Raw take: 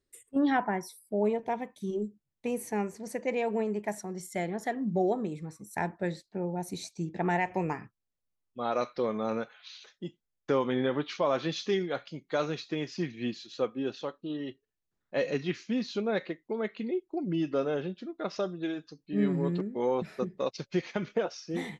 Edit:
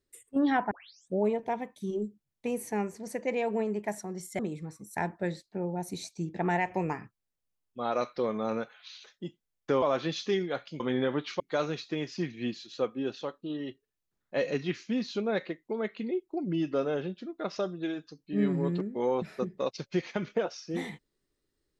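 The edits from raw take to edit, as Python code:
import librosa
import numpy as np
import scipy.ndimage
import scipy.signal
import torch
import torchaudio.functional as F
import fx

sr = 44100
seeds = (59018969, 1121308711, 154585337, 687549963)

y = fx.edit(x, sr, fx.tape_start(start_s=0.71, length_s=0.48),
    fx.cut(start_s=4.39, length_s=0.8),
    fx.move(start_s=10.62, length_s=0.6, to_s=12.2), tone=tone)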